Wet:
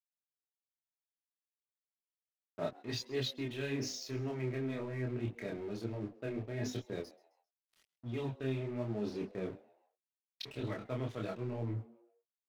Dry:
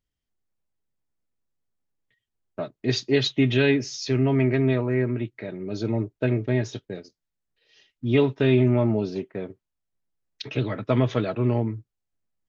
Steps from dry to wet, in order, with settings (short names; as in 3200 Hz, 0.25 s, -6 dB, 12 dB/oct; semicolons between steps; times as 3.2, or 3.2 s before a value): notches 50/100/150/200/250/300 Hz; reverse; compressor 10:1, threshold -34 dBFS, peak gain reduction 19 dB; reverse; crossover distortion -52 dBFS; chorus voices 2, 0.94 Hz, delay 27 ms, depth 3.4 ms; frequency-shifting echo 0.132 s, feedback 39%, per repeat +120 Hz, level -22 dB; gain +3.5 dB